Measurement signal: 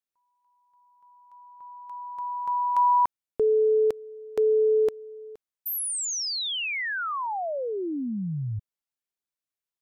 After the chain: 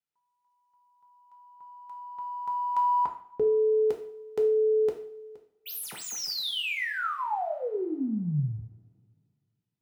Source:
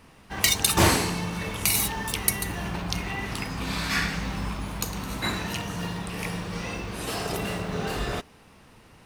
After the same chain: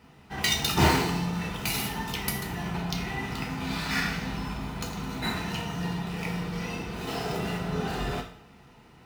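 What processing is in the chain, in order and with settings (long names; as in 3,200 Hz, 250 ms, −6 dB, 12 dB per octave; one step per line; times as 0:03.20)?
running median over 5 samples
notch comb filter 550 Hz
coupled-rooms reverb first 0.5 s, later 2.2 s, from −26 dB, DRR 2 dB
level −2 dB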